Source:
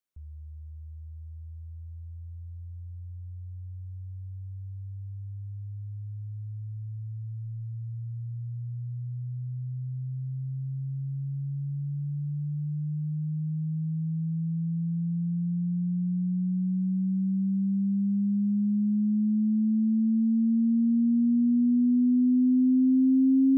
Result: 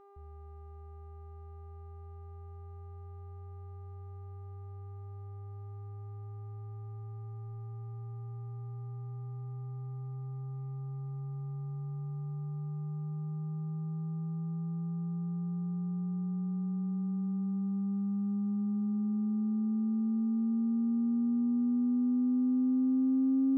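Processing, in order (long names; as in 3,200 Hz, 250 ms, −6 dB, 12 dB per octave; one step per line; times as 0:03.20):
hum with harmonics 400 Hz, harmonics 3, −51 dBFS −4 dB per octave
windowed peak hold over 3 samples
level −6.5 dB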